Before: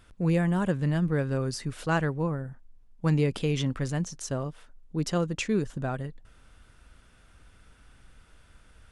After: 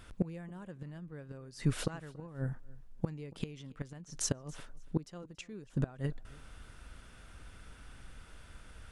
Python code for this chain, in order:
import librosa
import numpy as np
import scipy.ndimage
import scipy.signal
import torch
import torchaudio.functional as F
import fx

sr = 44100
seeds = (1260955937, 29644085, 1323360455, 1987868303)

y = fx.gate_flip(x, sr, shuts_db=-22.0, range_db=-24)
y = fx.echo_feedback(y, sr, ms=281, feedback_pct=18, wet_db=-22)
y = F.gain(torch.from_numpy(y), 3.5).numpy()